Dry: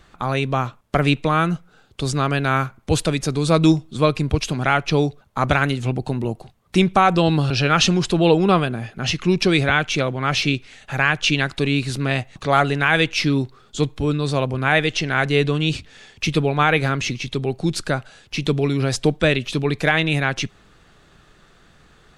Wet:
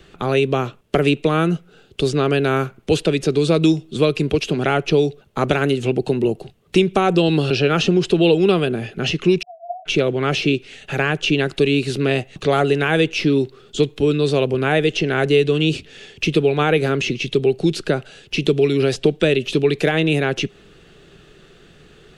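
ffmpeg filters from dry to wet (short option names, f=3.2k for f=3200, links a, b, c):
-filter_complex "[0:a]asplit=3[a][b][c];[a]afade=t=out:st=9.41:d=0.02[d];[b]asuperpass=centerf=690:order=12:qfactor=7.7,afade=t=in:st=9.41:d=0.02,afade=t=out:st=9.85:d=0.02[e];[c]afade=t=in:st=9.85:d=0.02[f];[d][e][f]amix=inputs=3:normalize=0,equalizer=f=160:t=o:w=0.67:g=5,equalizer=f=400:t=o:w=0.67:g=11,equalizer=f=1k:t=o:w=0.67:g=-6,equalizer=f=2.5k:t=o:w=0.67:g=-8,acrossover=split=190|1400|5200[g][h][i][j];[g]acompressor=threshold=-31dB:ratio=4[k];[h]acompressor=threshold=-15dB:ratio=4[l];[i]acompressor=threshold=-35dB:ratio=4[m];[j]acompressor=threshold=-40dB:ratio=4[n];[k][l][m][n]amix=inputs=4:normalize=0,equalizer=f=2.7k:t=o:w=0.64:g=14.5,volume=1.5dB"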